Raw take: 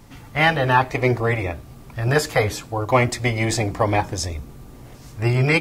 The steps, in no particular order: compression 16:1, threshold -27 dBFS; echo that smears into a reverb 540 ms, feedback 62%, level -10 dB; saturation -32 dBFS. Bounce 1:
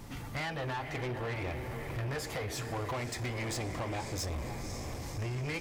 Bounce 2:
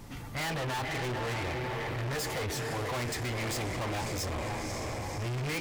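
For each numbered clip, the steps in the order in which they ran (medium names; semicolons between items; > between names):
compression > echo that smears into a reverb > saturation; echo that smears into a reverb > saturation > compression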